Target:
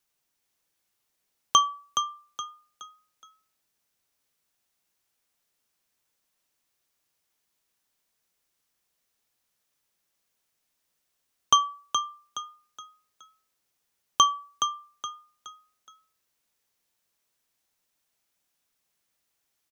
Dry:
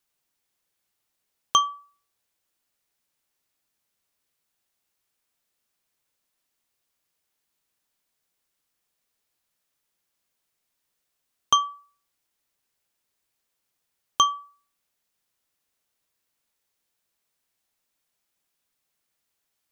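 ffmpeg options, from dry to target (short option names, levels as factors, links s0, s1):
-filter_complex "[0:a]equalizer=f=5900:w=5.3:g=2.5,asplit=2[s0][s1];[s1]asplit=4[s2][s3][s4][s5];[s2]adelay=420,afreqshift=34,volume=0.422[s6];[s3]adelay=840,afreqshift=68,volume=0.148[s7];[s4]adelay=1260,afreqshift=102,volume=0.0519[s8];[s5]adelay=1680,afreqshift=136,volume=0.018[s9];[s6][s7][s8][s9]amix=inputs=4:normalize=0[s10];[s0][s10]amix=inputs=2:normalize=0"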